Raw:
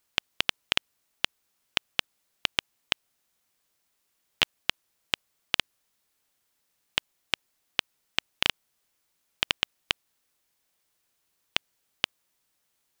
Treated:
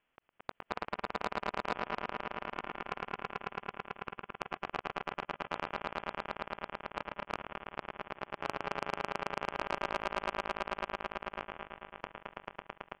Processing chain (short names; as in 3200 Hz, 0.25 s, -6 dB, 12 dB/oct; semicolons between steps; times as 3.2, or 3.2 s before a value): block floating point 3-bit; HPF 640 Hz 12 dB/oct; inverted band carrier 3800 Hz; on a send: swelling echo 0.11 s, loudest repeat 5, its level -4 dB; on the sum: harmonic-percussive split percussive -10 dB; auto swell 0.127 s; echo 0.215 s -11 dB; soft clip -24.5 dBFS, distortion -10 dB; gain +5 dB